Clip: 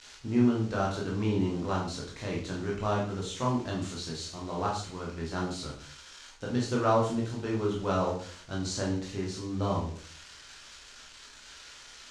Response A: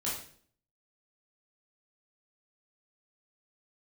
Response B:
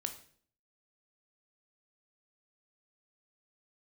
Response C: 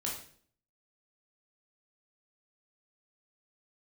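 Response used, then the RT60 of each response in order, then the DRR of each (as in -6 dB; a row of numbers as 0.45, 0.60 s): C; 0.55, 0.55, 0.55 s; -7.5, 6.0, -3.5 dB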